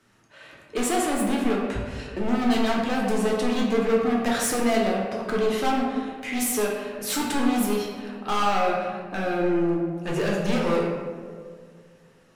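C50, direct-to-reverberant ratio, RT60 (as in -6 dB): 1.5 dB, -3.0 dB, 2.0 s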